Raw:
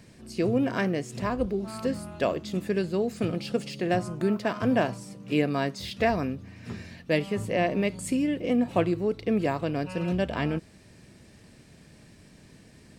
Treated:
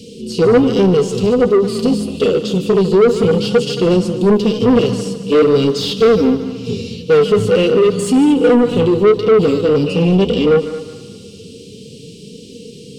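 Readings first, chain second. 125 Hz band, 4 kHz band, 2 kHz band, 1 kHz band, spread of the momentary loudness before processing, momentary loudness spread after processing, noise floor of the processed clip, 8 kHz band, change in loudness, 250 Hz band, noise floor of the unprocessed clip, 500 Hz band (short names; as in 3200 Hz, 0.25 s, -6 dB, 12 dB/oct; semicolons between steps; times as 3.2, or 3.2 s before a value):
+12.5 dB, +16.0 dB, +7.0 dB, +9.0 dB, 6 LU, 6 LU, -36 dBFS, +12.5 dB, +14.5 dB, +13.5 dB, -54 dBFS, +17.0 dB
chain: harmonic-percussive split harmonic +9 dB; Chebyshev band-stop 440–2900 Hz, order 4; bell 330 Hz -9.5 dB 0.24 oct; in parallel at +1.5 dB: limiter -18 dBFS, peak gain reduction 10 dB; on the sum: flange 0.48 Hz, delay 3.2 ms, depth 8.8 ms, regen -25%; small resonant body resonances 480/1200 Hz, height 15 dB, ringing for 60 ms; overdrive pedal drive 24 dB, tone 2100 Hz, clips at -2.5 dBFS; on a send: multi-head echo 74 ms, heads second and third, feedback 40%, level -15 dB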